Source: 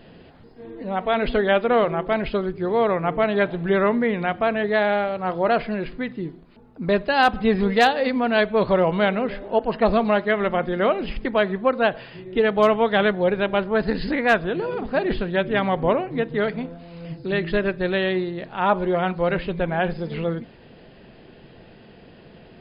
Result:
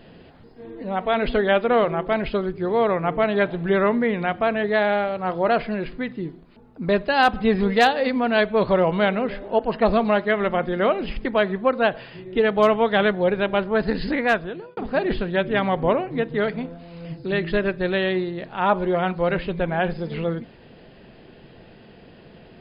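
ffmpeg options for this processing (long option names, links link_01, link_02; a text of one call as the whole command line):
ffmpeg -i in.wav -filter_complex "[0:a]asplit=2[link_01][link_02];[link_01]atrim=end=14.77,asetpts=PTS-STARTPTS,afade=type=out:start_time=14.2:duration=0.57[link_03];[link_02]atrim=start=14.77,asetpts=PTS-STARTPTS,afade=type=in:duration=0.004:curve=hsin[link_04];[link_03][link_04]concat=n=2:v=0:a=1" out.wav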